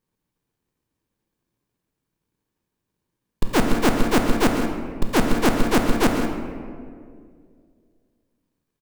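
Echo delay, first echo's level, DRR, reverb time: 135 ms, −10.5 dB, 2.0 dB, 2.1 s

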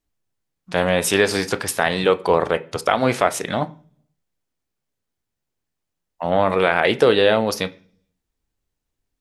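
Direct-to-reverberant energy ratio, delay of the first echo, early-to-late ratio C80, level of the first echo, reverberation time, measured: 11.5 dB, no echo audible, 24.5 dB, no echo audible, 0.45 s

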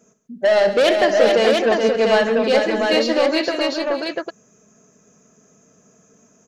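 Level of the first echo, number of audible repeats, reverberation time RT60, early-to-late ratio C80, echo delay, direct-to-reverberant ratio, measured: −12.0 dB, 5, no reverb audible, no reverb audible, 62 ms, no reverb audible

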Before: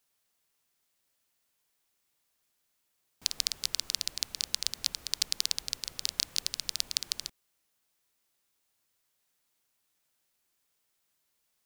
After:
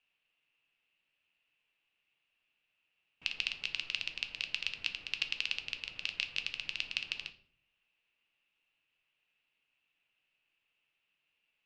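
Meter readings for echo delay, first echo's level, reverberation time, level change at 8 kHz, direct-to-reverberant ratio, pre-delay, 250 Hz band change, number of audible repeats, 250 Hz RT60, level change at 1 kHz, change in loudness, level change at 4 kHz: no echo audible, no echo audible, 0.55 s, −21.0 dB, 7.0 dB, 6 ms, −5.0 dB, no echo audible, 0.75 s, −4.0 dB, −4.5 dB, −5.0 dB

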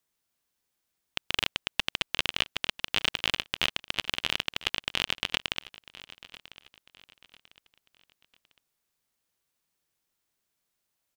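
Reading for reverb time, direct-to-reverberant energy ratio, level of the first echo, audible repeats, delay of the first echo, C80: no reverb audible, no reverb audible, −18.5 dB, 2, 998 ms, no reverb audible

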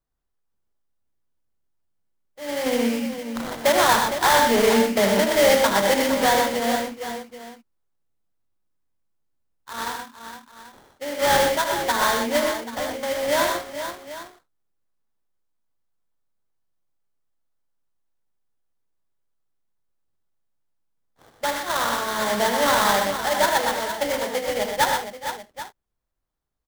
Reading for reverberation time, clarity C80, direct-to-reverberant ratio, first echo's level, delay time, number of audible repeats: no reverb audible, no reverb audible, no reverb audible, −8.5 dB, 77 ms, 5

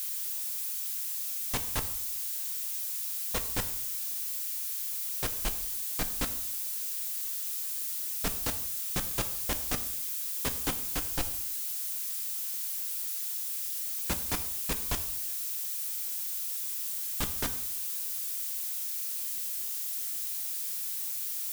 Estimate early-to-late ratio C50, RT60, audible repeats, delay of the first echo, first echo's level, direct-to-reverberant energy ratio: 12.5 dB, 0.75 s, no echo audible, no echo audible, no echo audible, 7.5 dB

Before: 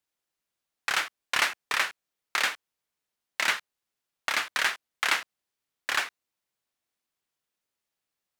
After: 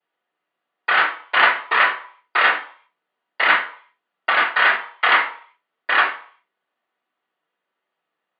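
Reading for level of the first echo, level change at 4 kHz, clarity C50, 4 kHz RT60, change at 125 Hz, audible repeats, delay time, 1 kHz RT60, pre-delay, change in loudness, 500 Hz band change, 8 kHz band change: no echo audible, +5.0 dB, 7.5 dB, 0.45 s, can't be measured, no echo audible, no echo audible, 0.55 s, 3 ms, +10.5 dB, +13.5 dB, below −40 dB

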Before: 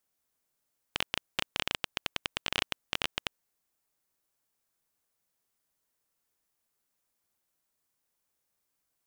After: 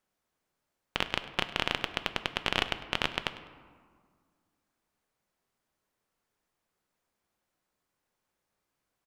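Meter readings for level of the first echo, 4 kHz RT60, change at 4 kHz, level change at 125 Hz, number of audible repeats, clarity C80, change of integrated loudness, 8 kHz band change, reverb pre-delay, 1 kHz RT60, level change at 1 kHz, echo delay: −18.0 dB, 0.90 s, +1.0 dB, +6.0 dB, 1, 12.5 dB, +2.5 dB, −4.0 dB, 5 ms, 1.8 s, +5.5 dB, 101 ms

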